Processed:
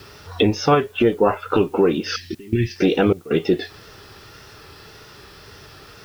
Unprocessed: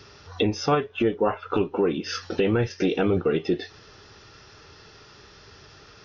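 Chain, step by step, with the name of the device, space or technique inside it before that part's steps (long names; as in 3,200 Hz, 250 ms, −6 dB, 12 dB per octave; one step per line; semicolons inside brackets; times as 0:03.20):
0:02.16–0:02.76: Chebyshev band-stop filter 380–1,800 Hz, order 5
worn cassette (low-pass filter 6,100 Hz; tape wow and flutter; tape dropouts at 0:02.35/0:03.13, 174 ms −20 dB; white noise bed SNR 35 dB)
level +6 dB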